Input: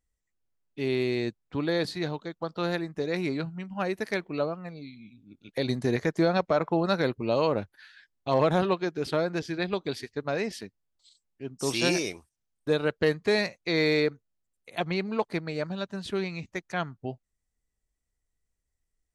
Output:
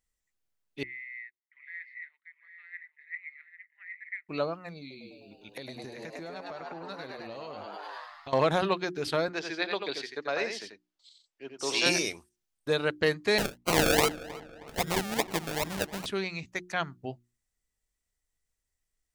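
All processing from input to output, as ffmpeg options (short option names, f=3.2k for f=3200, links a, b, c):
-filter_complex "[0:a]asettb=1/sr,asplit=3[a][b][c];[a]atrim=end=0.834[d];[b]atrim=start=0.83:end=4.29,asetpts=PTS-STARTPTS,afade=t=in:d=0.004:c=qsin,afade=t=out:st=3.456:d=0.004:c=qsin,asuperpass=centerf=2000:order=4:qfactor=7.4,aecho=1:1:734|795:0.141|0.282,atrim=end_sample=152586[e];[c]atrim=start=4.286[f];[d][e]acrossfade=d=0.004:c1=hsin:c2=qsin[g];[g][f]acrossfade=d=0.004:c1=qsin:c2=hsin,asettb=1/sr,asplit=3[h][i][j];[h]atrim=end=4.804[k];[i]atrim=start=4.8:end=8.33,asetpts=PTS-STARTPTS,afade=t=in:d=0.004:c=qsin,afade=t=out:st=3.526:d=0.004:c=qsin,asplit=9[l][m][n][o][p][q][r][s][t];[m]adelay=102,afreqshift=100,volume=-5dB[u];[n]adelay=204,afreqshift=200,volume=-9.6dB[v];[o]adelay=306,afreqshift=300,volume=-14.2dB[w];[p]adelay=408,afreqshift=400,volume=-18.7dB[x];[q]adelay=510,afreqshift=500,volume=-23.3dB[y];[r]adelay=612,afreqshift=600,volume=-27.9dB[z];[s]adelay=714,afreqshift=700,volume=-32.5dB[aa];[t]adelay=816,afreqshift=800,volume=-37.1dB[ab];[l][u][v][w][x][y][z][aa][ab]amix=inputs=9:normalize=0,atrim=end_sample=155673,acompressor=threshold=-36dB:ratio=8:attack=3.2:release=140:knee=1:detection=peak[ac];[j]atrim=start=8.326[ad];[k][ac]acrossfade=d=0.004:c1=hsin:c2=qsin[ae];[ae][ad]acrossfade=d=0.004:c1=qsin:c2=hsin,asettb=1/sr,asplit=3[af][ag][ah];[af]atrim=end=9.284[ai];[ag]atrim=start=9.28:end=11.86,asetpts=PTS-STARTPTS,afade=t=in:d=0.004:c=qsin,afade=t=out:st=2.576:d=0.004:c=qsin,acrossover=split=300 7000:gain=0.178 1 0.1[aj][ak][al];[aj][ak][al]amix=inputs=3:normalize=0,aecho=1:1:89:0.501,atrim=end_sample=113778[am];[ah]atrim=start=11.856[an];[ai][am]acrossfade=d=0.004:c1=hsin:c2=qsin[ao];[ao][an]acrossfade=d=0.004:c1=qsin:c2=hsin,asettb=1/sr,asplit=3[ap][aq][ar];[ap]atrim=end=13.384[as];[aq]atrim=start=13.38:end=16.06,asetpts=PTS-STARTPTS,afade=t=in:d=0.004:c=qsin,afade=t=out:st=2.676:d=0.004:c=qsin,equalizer=f=5.1k:t=o:w=2:g=8,acrusher=samples=35:mix=1:aa=0.000001:lfo=1:lforange=21:lforate=2.5,asplit=2[at][au];[au]adelay=315,lowpass=f=2.9k:p=1,volume=-17dB,asplit=2[av][aw];[aw]adelay=315,lowpass=f=2.9k:p=1,volume=0.47,asplit=2[ax][ay];[ay]adelay=315,lowpass=f=2.9k:p=1,volume=0.47,asplit=2[az][ba];[ba]adelay=315,lowpass=f=2.9k:p=1,volume=0.47[bb];[at][av][ax][az][bb]amix=inputs=5:normalize=0,atrim=end_sample=118188[bc];[ar]atrim=start=16.056[bd];[as][bc]acrossfade=d=0.004:c1=hsin:c2=qsin[be];[be][bd]acrossfade=d=0.004:c1=qsin:c2=hsin,tiltshelf=f=970:g=-3.5,bandreject=f=60:t=h:w=6,bandreject=f=120:t=h:w=6,bandreject=f=180:t=h:w=6,bandreject=f=240:t=h:w=6,bandreject=f=300:t=h:w=6,bandreject=f=360:t=h:w=6"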